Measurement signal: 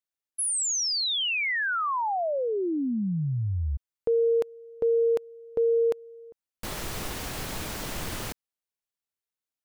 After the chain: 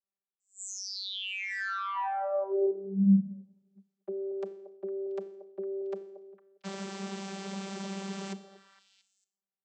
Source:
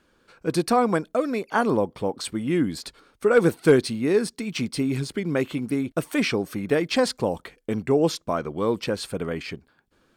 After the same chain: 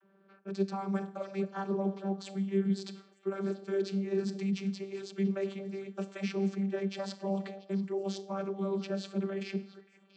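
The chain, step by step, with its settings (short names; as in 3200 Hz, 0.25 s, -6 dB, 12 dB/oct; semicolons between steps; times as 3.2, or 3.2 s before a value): high shelf 3400 Hz +10.5 dB; Schroeder reverb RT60 0.74 s, combs from 28 ms, DRR 15 dB; reverse; compressor 6:1, threshold -29 dBFS; reverse; low-pass opened by the level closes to 1600 Hz, open at -32.5 dBFS; vocoder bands 32, saw 195 Hz; on a send: delay with a stepping band-pass 0.228 s, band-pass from 550 Hz, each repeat 1.4 oct, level -10.5 dB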